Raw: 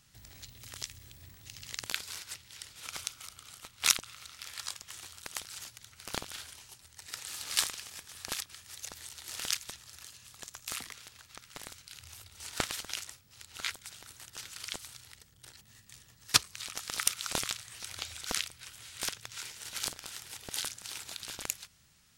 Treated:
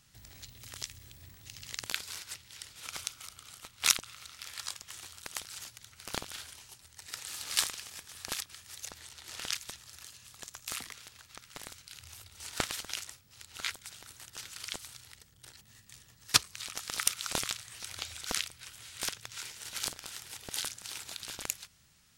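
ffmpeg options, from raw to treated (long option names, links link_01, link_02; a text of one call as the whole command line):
ffmpeg -i in.wav -filter_complex "[0:a]asettb=1/sr,asplit=3[link_01][link_02][link_03];[link_01]atrim=end=8.914[link_04];[link_02]atrim=start=8.91:end=9.55,asetpts=PTS-STARTPTS,afade=type=in:duration=0.004:curve=qsin,afade=type=out:start_time=0.636:duration=0.004:curve=qsin,highshelf=frequency=7200:gain=-8.5[link_05];[link_03]atrim=start=9.546[link_06];[link_04][link_05]acrossfade=duration=0.004:curve1=hsin:curve2=qsin[link_07];[link_07][link_06]acrossfade=duration=0.004:curve1=qsin:curve2=hsin" out.wav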